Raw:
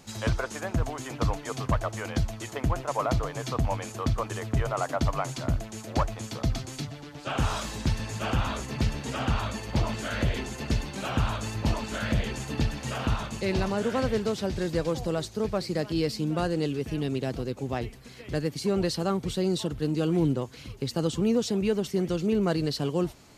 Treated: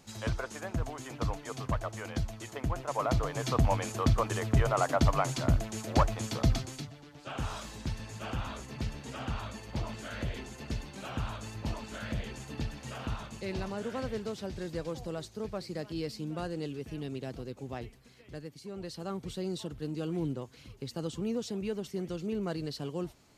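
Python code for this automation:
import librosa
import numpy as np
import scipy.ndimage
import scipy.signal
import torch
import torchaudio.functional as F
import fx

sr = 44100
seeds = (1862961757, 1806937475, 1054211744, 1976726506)

y = fx.gain(x, sr, db=fx.line((2.71, -6.0), (3.55, 1.0), (6.52, 1.0), (6.93, -9.0), (17.82, -9.0), (18.68, -17.0), (19.18, -9.0)))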